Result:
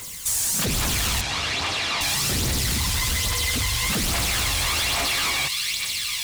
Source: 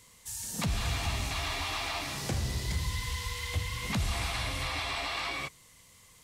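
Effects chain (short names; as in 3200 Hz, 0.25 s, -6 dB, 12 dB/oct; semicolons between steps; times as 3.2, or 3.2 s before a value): in parallel at -10 dB: requantised 8-bit, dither triangular; on the sum: high shelf 2400 Hz +9.5 dB; thin delay 0.449 s, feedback 74%, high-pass 2700 Hz, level -7.5 dB; phaser 1.2 Hz, delay 1.3 ms, feedback 51%; wavefolder -23 dBFS; compressor 2.5:1, threshold -32 dBFS, peak gain reduction 4.5 dB; 1.21–2.01 BPF 100–4900 Hz; gain +9 dB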